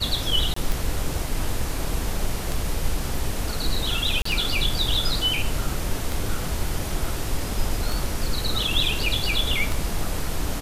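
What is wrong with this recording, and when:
tick 33 1/3 rpm
0.54–0.56 s: dropout 24 ms
4.22–4.25 s: dropout 34 ms

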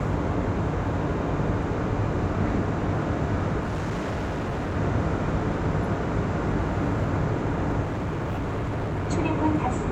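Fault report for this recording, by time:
3.59–4.77 s: clipped -25 dBFS
7.83–9.11 s: clipped -25 dBFS

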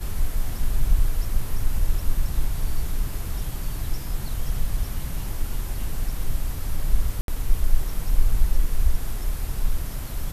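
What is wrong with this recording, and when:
7.21–7.28 s: dropout 72 ms

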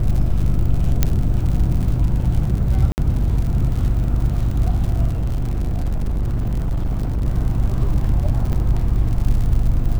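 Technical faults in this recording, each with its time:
crackle 79 per s -25 dBFS
hum 50 Hz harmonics 7 -21 dBFS
1.03 s: pop -1 dBFS
2.92–2.98 s: dropout 59 ms
5.08–7.26 s: clipped -17 dBFS
8.53 s: dropout 2.7 ms

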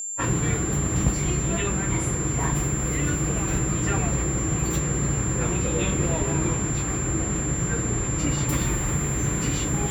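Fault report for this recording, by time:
whine 7.3 kHz -29 dBFS

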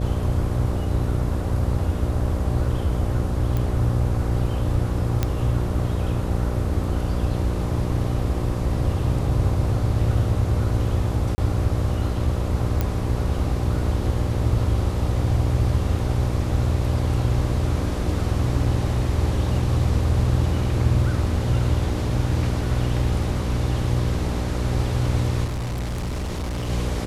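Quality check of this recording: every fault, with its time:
buzz 60 Hz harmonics 10 -26 dBFS
3.57 s: pop
5.23 s: pop -8 dBFS
11.35–11.38 s: dropout 30 ms
12.81 s: pop -10 dBFS
25.44–26.70 s: clipped -24 dBFS

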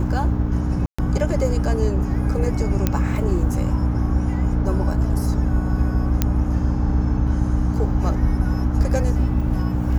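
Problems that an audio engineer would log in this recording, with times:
hum 60 Hz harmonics 5 -24 dBFS
0.86–0.98 s: dropout 125 ms
2.87 s: pop -5 dBFS
6.22 s: pop -4 dBFS

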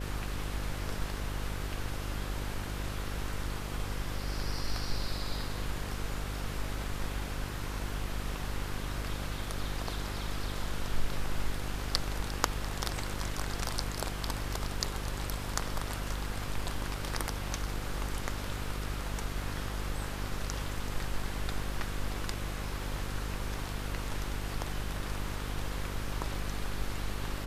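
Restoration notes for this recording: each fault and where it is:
buzz 50 Hz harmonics 11 -38 dBFS

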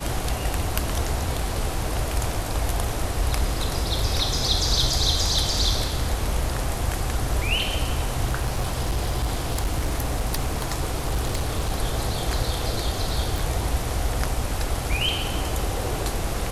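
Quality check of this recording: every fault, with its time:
8.29–11.72 s: clipped -19 dBFS
13.38 s: pop

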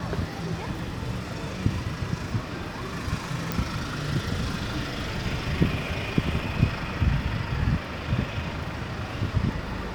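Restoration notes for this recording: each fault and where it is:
3.52 s: pop

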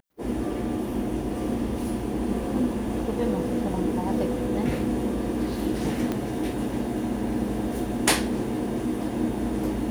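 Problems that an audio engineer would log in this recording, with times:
6.12 s: pop -14 dBFS

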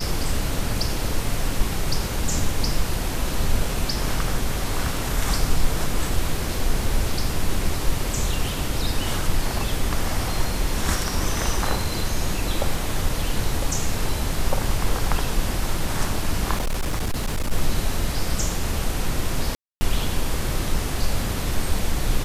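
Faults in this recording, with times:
16.54–17.52 s: clipped -19.5 dBFS
19.55–19.81 s: dropout 260 ms

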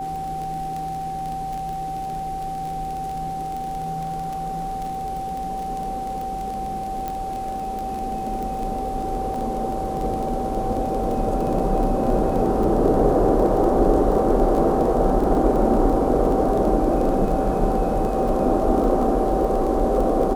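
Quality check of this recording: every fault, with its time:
crackle 25 per s -26 dBFS
whine 770 Hz -26 dBFS
7.08 s: pop -15 dBFS
9.34 s: dropout 3.4 ms

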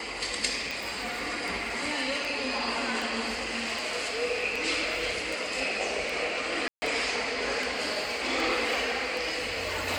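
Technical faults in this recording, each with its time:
tick 78 rpm
6.68–6.82 s: dropout 140 ms

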